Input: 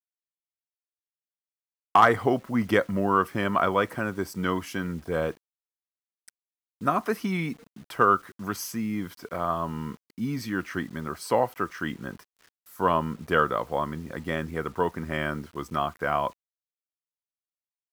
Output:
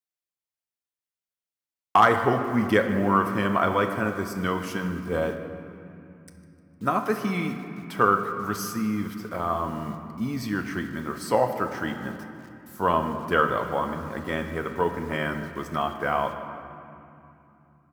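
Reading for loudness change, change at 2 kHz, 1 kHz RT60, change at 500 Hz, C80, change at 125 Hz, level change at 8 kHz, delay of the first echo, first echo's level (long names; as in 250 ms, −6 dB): +1.0 dB, +1.5 dB, 2.8 s, +1.5 dB, 8.0 dB, +1.5 dB, +0.5 dB, 152 ms, −17.5 dB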